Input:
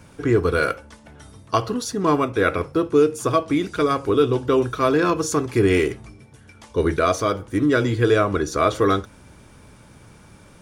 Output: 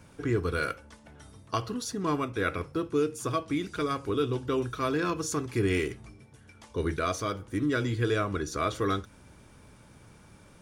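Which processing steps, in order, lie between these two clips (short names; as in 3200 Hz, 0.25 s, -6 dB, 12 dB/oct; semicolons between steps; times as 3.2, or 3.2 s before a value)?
dynamic EQ 610 Hz, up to -6 dB, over -31 dBFS, Q 0.7; gain -6.5 dB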